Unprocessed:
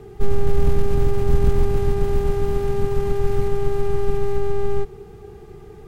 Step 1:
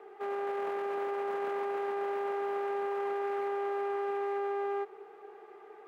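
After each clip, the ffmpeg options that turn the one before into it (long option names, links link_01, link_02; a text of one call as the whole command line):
ffmpeg -i in.wav -filter_complex "[0:a]highpass=frequency=290:width=0.5412,highpass=frequency=290:width=1.3066,acrossover=split=510 2400:gain=0.0891 1 0.0794[link_01][link_02][link_03];[link_01][link_02][link_03]amix=inputs=3:normalize=0" out.wav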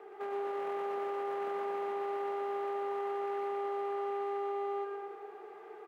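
ffmpeg -i in.wav -filter_complex "[0:a]acompressor=threshold=-37dB:ratio=3,asplit=2[link_01][link_02];[link_02]aecho=0:1:120|228|325.2|412.7|491.4:0.631|0.398|0.251|0.158|0.1[link_03];[link_01][link_03]amix=inputs=2:normalize=0" out.wav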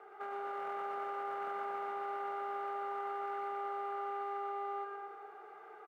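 ffmpeg -i in.wav -af "equalizer=frequency=1300:width=1.9:gain=9.5,aecho=1:1:1.4:0.35,volume=-5.5dB" out.wav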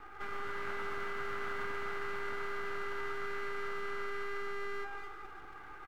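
ffmpeg -i in.wav -filter_complex "[0:a]acrossover=split=1000[link_01][link_02];[link_01]aeval=exprs='abs(val(0))':channel_layout=same[link_03];[link_02]aecho=1:1:13|27:0.631|0.631[link_04];[link_03][link_04]amix=inputs=2:normalize=0,volume=5dB" out.wav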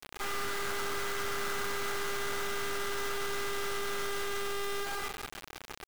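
ffmpeg -i in.wav -filter_complex "[0:a]asplit=2[link_01][link_02];[link_02]alimiter=level_in=11dB:limit=-24dB:level=0:latency=1,volume=-11dB,volume=-1.5dB[link_03];[link_01][link_03]amix=inputs=2:normalize=0,acrusher=bits=5:mix=0:aa=0.000001" out.wav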